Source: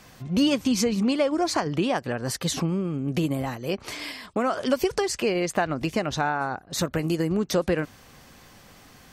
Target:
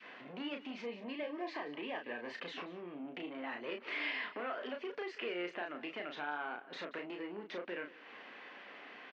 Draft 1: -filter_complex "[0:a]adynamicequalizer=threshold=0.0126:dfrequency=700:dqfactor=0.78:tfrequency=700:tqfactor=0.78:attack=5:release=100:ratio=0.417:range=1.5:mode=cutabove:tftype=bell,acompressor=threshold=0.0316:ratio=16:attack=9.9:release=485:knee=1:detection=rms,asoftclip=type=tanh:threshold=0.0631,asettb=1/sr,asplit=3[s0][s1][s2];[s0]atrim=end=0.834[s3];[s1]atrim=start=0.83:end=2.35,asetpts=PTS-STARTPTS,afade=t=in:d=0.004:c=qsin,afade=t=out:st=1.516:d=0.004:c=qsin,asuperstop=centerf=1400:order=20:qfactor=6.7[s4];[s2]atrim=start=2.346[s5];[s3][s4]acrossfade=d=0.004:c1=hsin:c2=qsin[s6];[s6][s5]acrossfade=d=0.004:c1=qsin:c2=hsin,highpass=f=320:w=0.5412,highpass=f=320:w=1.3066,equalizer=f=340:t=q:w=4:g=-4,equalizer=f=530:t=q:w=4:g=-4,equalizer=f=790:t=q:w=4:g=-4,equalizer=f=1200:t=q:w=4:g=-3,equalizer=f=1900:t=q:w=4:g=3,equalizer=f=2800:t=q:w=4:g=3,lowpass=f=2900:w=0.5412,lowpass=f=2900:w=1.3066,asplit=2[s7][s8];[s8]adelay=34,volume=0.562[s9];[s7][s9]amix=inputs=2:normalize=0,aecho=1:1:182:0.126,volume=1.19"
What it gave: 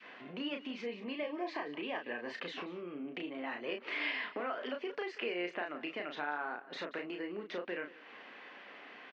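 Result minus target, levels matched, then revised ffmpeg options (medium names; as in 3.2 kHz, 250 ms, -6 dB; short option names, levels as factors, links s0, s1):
saturation: distortion -13 dB
-filter_complex "[0:a]adynamicequalizer=threshold=0.0126:dfrequency=700:dqfactor=0.78:tfrequency=700:tqfactor=0.78:attack=5:release=100:ratio=0.417:range=1.5:mode=cutabove:tftype=bell,acompressor=threshold=0.0316:ratio=16:attack=9.9:release=485:knee=1:detection=rms,asoftclip=type=tanh:threshold=0.0224,asettb=1/sr,asplit=3[s0][s1][s2];[s0]atrim=end=0.834[s3];[s1]atrim=start=0.83:end=2.35,asetpts=PTS-STARTPTS,afade=t=in:d=0.004:c=qsin,afade=t=out:st=1.516:d=0.004:c=qsin,asuperstop=centerf=1400:order=20:qfactor=6.7[s4];[s2]atrim=start=2.346[s5];[s3][s4]acrossfade=d=0.004:c1=hsin:c2=qsin[s6];[s6][s5]acrossfade=d=0.004:c1=qsin:c2=hsin,highpass=f=320:w=0.5412,highpass=f=320:w=1.3066,equalizer=f=340:t=q:w=4:g=-4,equalizer=f=530:t=q:w=4:g=-4,equalizer=f=790:t=q:w=4:g=-4,equalizer=f=1200:t=q:w=4:g=-3,equalizer=f=1900:t=q:w=4:g=3,equalizer=f=2800:t=q:w=4:g=3,lowpass=f=2900:w=0.5412,lowpass=f=2900:w=1.3066,asplit=2[s7][s8];[s8]adelay=34,volume=0.562[s9];[s7][s9]amix=inputs=2:normalize=0,aecho=1:1:182:0.126,volume=1.19"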